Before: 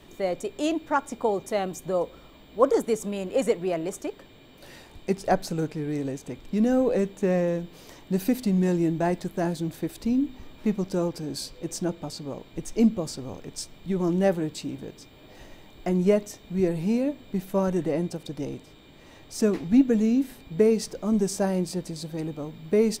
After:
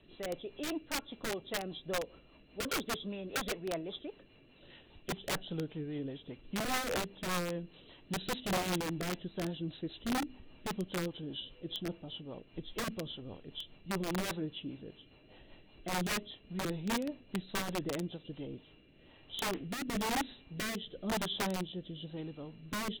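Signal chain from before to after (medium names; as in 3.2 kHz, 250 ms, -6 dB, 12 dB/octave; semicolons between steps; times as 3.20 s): knee-point frequency compression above 2.6 kHz 4:1; integer overflow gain 18.5 dB; rotary cabinet horn 5 Hz, later 1 Hz, at 18.11 s; trim -8.5 dB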